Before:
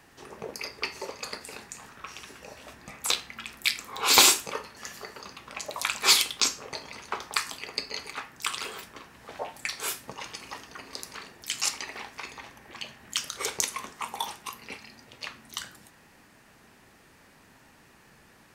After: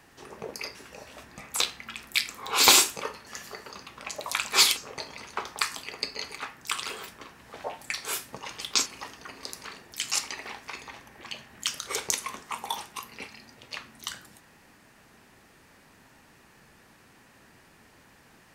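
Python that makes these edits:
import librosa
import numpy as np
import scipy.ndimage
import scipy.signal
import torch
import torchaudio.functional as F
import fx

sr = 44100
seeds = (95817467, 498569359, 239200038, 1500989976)

y = fx.edit(x, sr, fx.cut(start_s=0.75, length_s=1.5),
    fx.move(start_s=6.27, length_s=0.25, to_s=10.36), tone=tone)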